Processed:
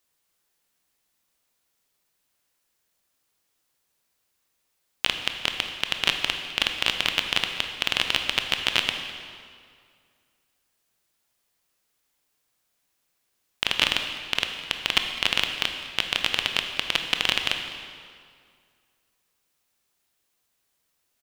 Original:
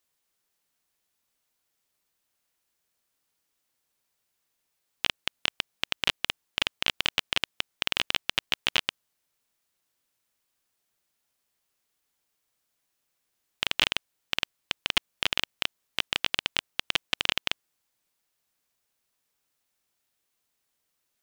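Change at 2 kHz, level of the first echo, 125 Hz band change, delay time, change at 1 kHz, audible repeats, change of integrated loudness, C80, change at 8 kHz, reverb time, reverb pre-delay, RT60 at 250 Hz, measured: +4.0 dB, −18.5 dB, +4.5 dB, 205 ms, +4.5 dB, 1, +4.0 dB, 7.0 dB, +4.0 dB, 2.1 s, 19 ms, 2.2 s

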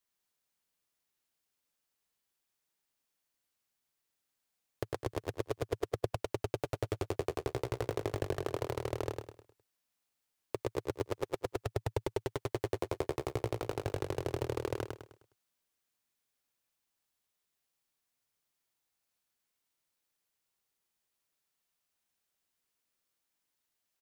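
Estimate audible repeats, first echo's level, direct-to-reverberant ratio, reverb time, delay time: 4, −4.0 dB, no reverb audible, no reverb audible, 103 ms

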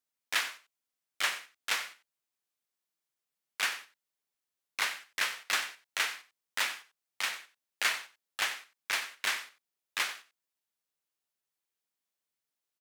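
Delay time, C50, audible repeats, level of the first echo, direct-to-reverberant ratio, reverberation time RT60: 92 ms, no reverb audible, 1, −15.0 dB, no reverb audible, no reverb audible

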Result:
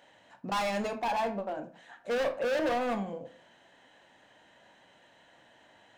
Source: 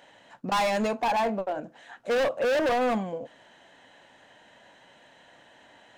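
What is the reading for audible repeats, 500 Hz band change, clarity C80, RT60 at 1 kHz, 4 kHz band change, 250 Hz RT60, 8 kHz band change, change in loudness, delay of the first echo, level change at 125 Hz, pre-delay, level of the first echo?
no echo audible, −5.0 dB, 18.5 dB, 0.40 s, −5.0 dB, 0.50 s, −5.0 dB, −5.0 dB, no echo audible, −4.0 dB, 18 ms, no echo audible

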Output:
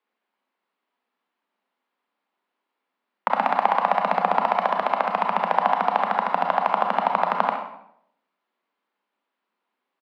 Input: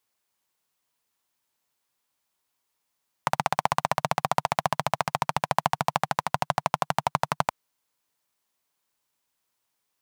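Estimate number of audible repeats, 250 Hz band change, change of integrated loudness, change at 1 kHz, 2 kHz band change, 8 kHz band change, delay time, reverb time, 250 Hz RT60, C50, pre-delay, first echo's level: 1, +3.0 dB, +5.0 dB, +5.5 dB, +3.5 dB, below −20 dB, 67 ms, 0.70 s, 0.80 s, 4.0 dB, 27 ms, −10.0 dB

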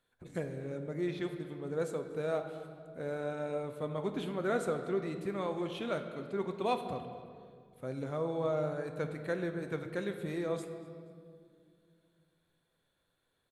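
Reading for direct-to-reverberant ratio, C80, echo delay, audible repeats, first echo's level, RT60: 6.0 dB, 9.5 dB, 239 ms, 1, −21.0 dB, 2.2 s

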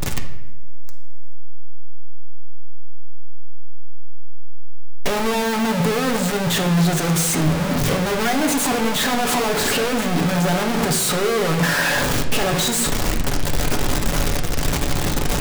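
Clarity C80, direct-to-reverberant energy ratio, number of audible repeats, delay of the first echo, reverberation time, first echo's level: 11.0 dB, 2.0 dB, no echo audible, no echo audible, 0.95 s, no echo audible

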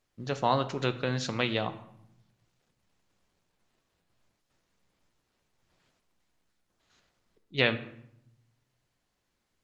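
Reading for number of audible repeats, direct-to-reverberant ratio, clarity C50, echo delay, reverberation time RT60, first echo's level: no echo audible, 9.0 dB, 14.0 dB, no echo audible, 0.75 s, no echo audible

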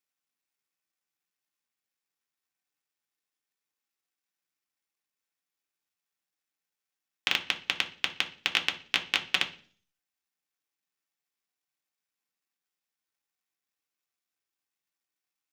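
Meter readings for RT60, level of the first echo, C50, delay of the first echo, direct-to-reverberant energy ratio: 0.45 s, no echo audible, 14.0 dB, no echo audible, 2.0 dB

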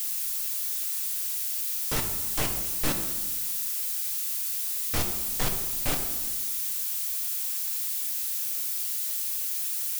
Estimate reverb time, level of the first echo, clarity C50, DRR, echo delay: 1.2 s, no echo audible, 7.0 dB, 3.5 dB, no echo audible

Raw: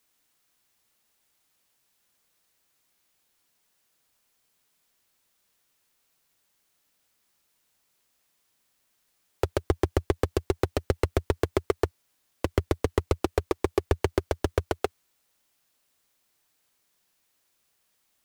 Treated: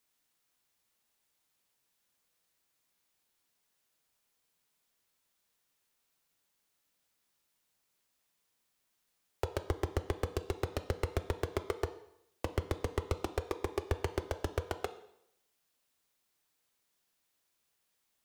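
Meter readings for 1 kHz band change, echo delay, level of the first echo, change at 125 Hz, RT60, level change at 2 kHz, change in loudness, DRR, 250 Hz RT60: −7.0 dB, no echo audible, no echo audible, −7.5 dB, 0.75 s, −7.0 dB, −8.5 dB, 9.5 dB, 0.75 s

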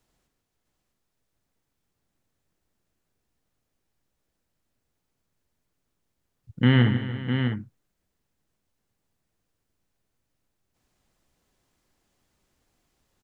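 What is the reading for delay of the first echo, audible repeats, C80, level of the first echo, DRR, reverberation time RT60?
149 ms, 4, no reverb audible, −11.0 dB, no reverb audible, no reverb audible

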